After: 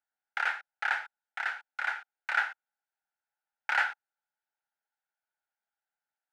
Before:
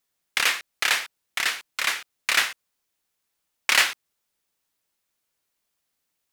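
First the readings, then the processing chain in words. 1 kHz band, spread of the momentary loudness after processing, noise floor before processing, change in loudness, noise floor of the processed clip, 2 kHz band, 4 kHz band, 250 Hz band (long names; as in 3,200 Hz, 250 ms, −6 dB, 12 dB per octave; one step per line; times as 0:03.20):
−2.5 dB, 11 LU, −79 dBFS, −9.0 dB, below −85 dBFS, −6.0 dB, −20.0 dB, below −20 dB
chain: pair of resonant band-passes 1,100 Hz, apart 0.79 octaves
dynamic equaliser 1,100 Hz, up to +4 dB, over −41 dBFS, Q 1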